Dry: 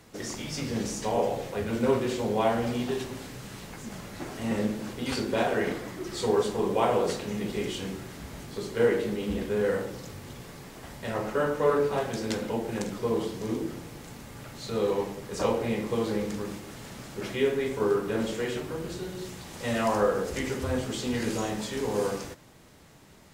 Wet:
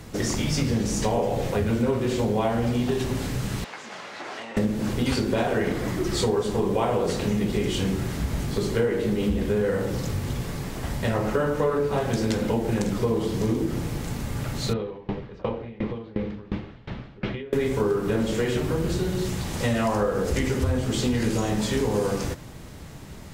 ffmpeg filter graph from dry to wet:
-filter_complex "[0:a]asettb=1/sr,asplit=3[a][b][c];[a]atrim=end=3.644[d];[b]atrim=start=3.64:end=4.57,asetpts=PTS-STARTPTS,afade=t=in:d=0.004:c=qsin,afade=t=out:st=0.926:d=0.004:c=qsin,acompressor=threshold=-33dB:ratio=12:attack=3.2:release=140:knee=1:detection=peak,highpass=690,lowpass=4.4k[e];[c]atrim=start=4.566[f];[d][e]acrossfade=d=0.004:c1=hsin:c2=qsin[g];[g][f]acrossfade=d=0.004:c1=qsin:c2=hsin,asettb=1/sr,asplit=3[h][i][j];[h]atrim=end=14.734[k];[i]atrim=start=14.73:end=17.53,asetpts=PTS-STARTPTS,afade=t=in:d=0.004:c=qsin,afade=t=out:st=2.796:d=0.004:c=qsin,lowpass=f=3.6k:w=0.5412,lowpass=f=3.6k:w=1.3066,acompressor=threshold=-31dB:ratio=4:attack=3.2:release=140:knee=1:detection=peak,aeval=exprs='val(0)*pow(10,-24*if(lt(mod(2.8*n/s,1),2*abs(2.8)/1000),1-mod(2.8*n/s,1)/(2*abs(2.8)/1000),(mod(2.8*n/s,1)-2*abs(2.8)/1000)/(1-2*abs(2.8)/1000))/20)':c=same[l];[j]atrim=start=17.526[m];[k][l]acrossfade=d=0.004:c1=hsin:c2=qsin[n];[n][m]acrossfade=d=0.004:c1=qsin:c2=hsin,lowshelf=f=160:g=11.5,acompressor=threshold=-29dB:ratio=6,volume=8.5dB"

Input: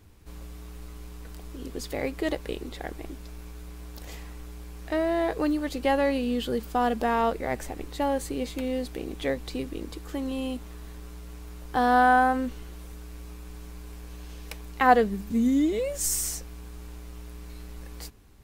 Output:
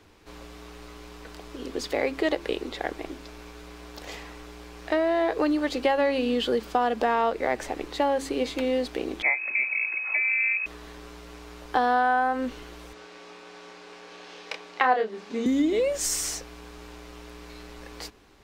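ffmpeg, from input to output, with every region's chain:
-filter_complex "[0:a]asettb=1/sr,asplit=3[a][b][c];[a]atrim=end=9.224[d];[b]atrim=start=9.22:end=10.66,asetpts=PTS-STARTPTS,afade=t=in:d=0.004:c=qsin,afade=t=out:st=1.436:d=0.004:c=qsin,asubboost=boost=7:cutoff=59,bandreject=f=1.1k:w=7.6,lowpass=f=2.2k:t=q:w=0.5098,lowpass=f=2.2k:t=q:w=0.6013,lowpass=f=2.2k:t=q:w=0.9,lowpass=f=2.2k:t=q:w=2.563,afreqshift=-2600[e];[c]atrim=start=10.656[f];[d][e]acrossfade=d=0.004:c1=hsin:c2=qsin[g];[g][f]acrossfade=d=0.004:c1=qsin:c2=hsin,asettb=1/sr,asplit=3[h][i][j];[h]atrim=end=12.934[k];[i]atrim=start=12.93:end=15.46,asetpts=PTS-STARTPTS,afade=t=in:d=0.004:c=qsin,afade=t=out:st=2.526:d=0.004:c=qsin,highpass=300,lowpass=6k,asplit=2[l][m];[m]adelay=28,volume=-5dB[n];[l][n]amix=inputs=2:normalize=0,atrim=end_sample=111573[o];[j]atrim=start=15.456[p];[k][o]acrossfade=d=0.004:c1=hsin:c2=qsin[q];[q][p]acrossfade=d=0.004:c1=qsin:c2=hsin,acrossover=split=270 6300:gain=0.2 1 0.2[r][s][t];[r][s][t]amix=inputs=3:normalize=0,bandreject=f=68.16:t=h:w=4,bandreject=f=136.32:t=h:w=4,bandreject=f=204.48:t=h:w=4,bandreject=f=272.64:t=h:w=4,bandreject=f=340.8:t=h:w=4,acompressor=threshold=-27dB:ratio=4,volume=7dB"

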